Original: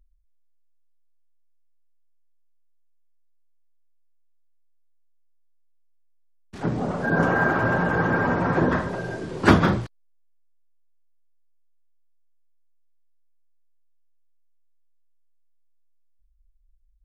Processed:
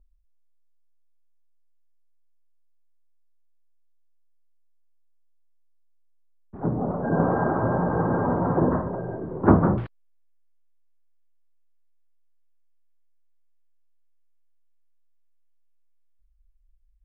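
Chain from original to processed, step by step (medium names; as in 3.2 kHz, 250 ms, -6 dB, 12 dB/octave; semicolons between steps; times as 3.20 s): low-pass 1.1 kHz 24 dB/octave, from 9.78 s 2.9 kHz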